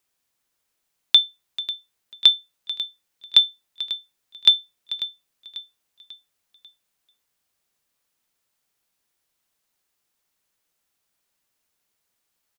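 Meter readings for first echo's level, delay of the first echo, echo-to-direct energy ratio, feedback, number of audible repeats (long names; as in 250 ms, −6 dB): −15.0 dB, 543 ms, −14.0 dB, 45%, 3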